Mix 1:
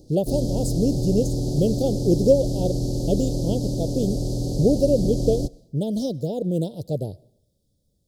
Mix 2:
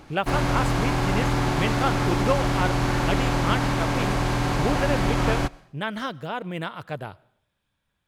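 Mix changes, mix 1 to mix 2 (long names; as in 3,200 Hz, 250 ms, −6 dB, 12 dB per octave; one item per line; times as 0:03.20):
speech −9.5 dB
master: remove elliptic band-stop filter 540–4,700 Hz, stop band 50 dB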